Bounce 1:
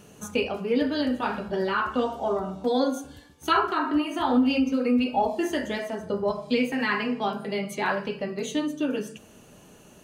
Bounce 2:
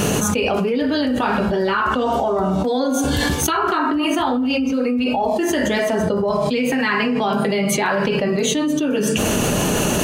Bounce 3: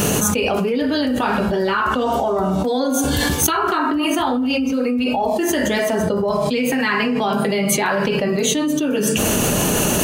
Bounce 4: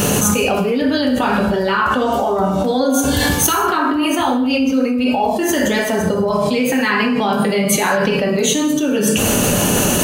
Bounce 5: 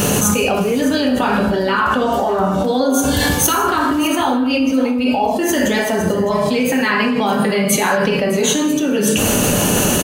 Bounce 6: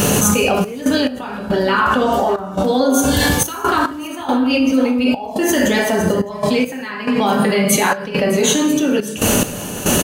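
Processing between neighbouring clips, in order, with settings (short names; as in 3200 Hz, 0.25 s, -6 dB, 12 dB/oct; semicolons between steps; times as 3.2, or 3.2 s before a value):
fast leveller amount 100%; gain -2 dB
high shelf 10000 Hz +10.5 dB
non-linear reverb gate 0.23 s falling, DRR 5.5 dB; gain +1.5 dB
echo 0.608 s -15.5 dB
step gate "xxx.x..xxxx.x" 70 bpm -12 dB; gain +1 dB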